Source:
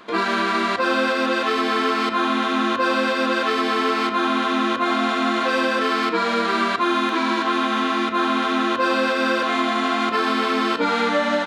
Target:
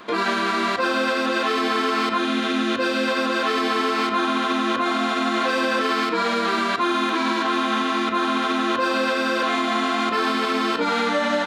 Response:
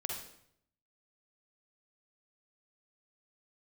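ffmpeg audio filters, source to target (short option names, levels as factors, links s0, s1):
-filter_complex "[0:a]asettb=1/sr,asplit=3[s0][s1][s2];[s0]atrim=end=2.184[s3];[s1]atrim=start=2.18:end=3.08,asetpts=PTS-STARTPTS,afade=t=in:d=0.004:c=qsin,afade=t=out:st=0.896:d=0.004:c=qsin,equalizer=f=990:t=o:w=0.83:g=-10.5[s4];[s2]atrim=start=3.076[s5];[s3][s4]acrossfade=d=0.004:c1=hsin:c2=qsin[s6];[s6][s5]acrossfade=d=0.004:c1=qsin:c2=hsin,acrossover=split=4600[s7][s8];[s7]alimiter=limit=0.15:level=0:latency=1:release=59[s9];[s8]asoftclip=type=tanh:threshold=0.02[s10];[s9][s10]amix=inputs=2:normalize=0,volume=1.41"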